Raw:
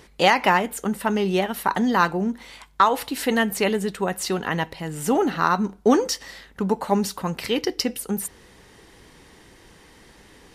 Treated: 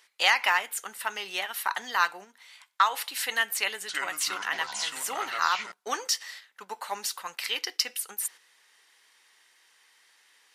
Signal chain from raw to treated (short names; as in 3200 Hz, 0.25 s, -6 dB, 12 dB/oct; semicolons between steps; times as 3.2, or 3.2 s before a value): 3.57–5.72 echoes that change speed 0.318 s, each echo -6 st, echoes 3; HPF 1400 Hz 12 dB/oct; gate -42 dBFS, range -7 dB